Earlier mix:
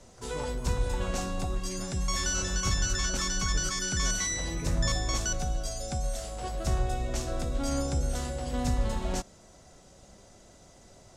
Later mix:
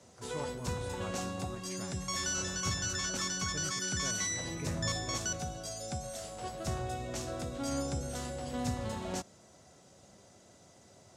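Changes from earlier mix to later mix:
background -3.5 dB; master: add HPF 81 Hz 24 dB/oct

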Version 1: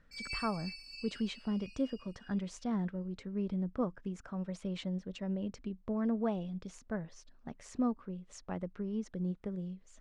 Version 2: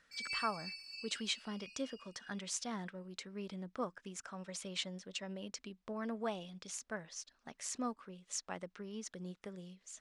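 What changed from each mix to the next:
speech: add tilt +4.5 dB/oct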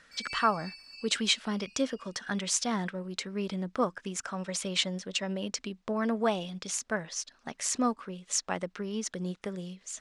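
speech +11.0 dB

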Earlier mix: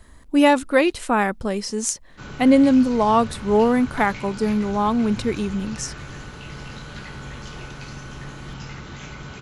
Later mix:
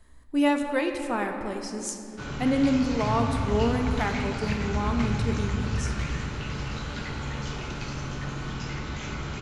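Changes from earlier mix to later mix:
speech -10.5 dB; second sound +7.5 dB; reverb: on, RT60 2.8 s

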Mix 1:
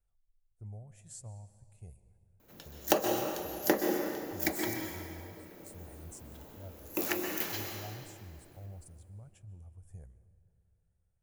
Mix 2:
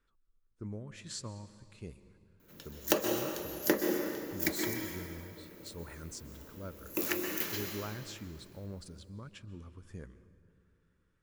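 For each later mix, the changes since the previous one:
speech: remove EQ curve 110 Hz 0 dB, 280 Hz -20 dB, 730 Hz -6 dB, 1100 Hz -21 dB, 2500 Hz -16 dB, 4200 Hz -21 dB, 8800 Hz +2 dB; master: add bell 750 Hz -10.5 dB 0.4 oct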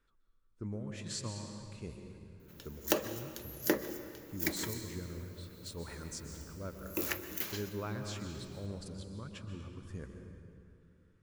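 speech: send +11.5 dB; background: send -11.5 dB

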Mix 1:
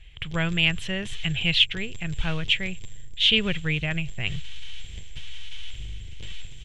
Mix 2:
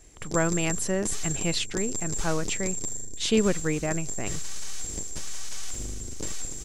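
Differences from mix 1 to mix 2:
speech -7.5 dB; master: remove EQ curve 140 Hz 0 dB, 260 Hz -18 dB, 380 Hz -15 dB, 1200 Hz -13 dB, 3200 Hz +10 dB, 4800 Hz -14 dB, 7000 Hz -20 dB, 12000 Hz -24 dB

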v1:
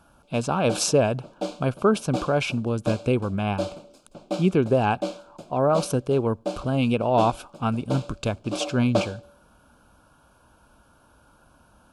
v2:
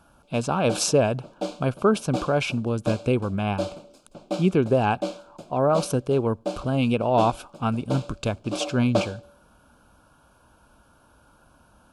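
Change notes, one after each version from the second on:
none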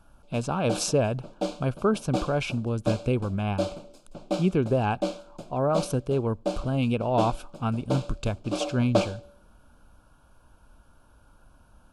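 speech -4.5 dB; master: remove HPF 140 Hz 6 dB/oct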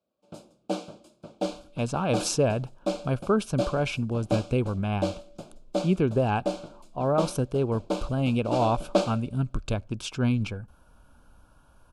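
speech: entry +1.45 s

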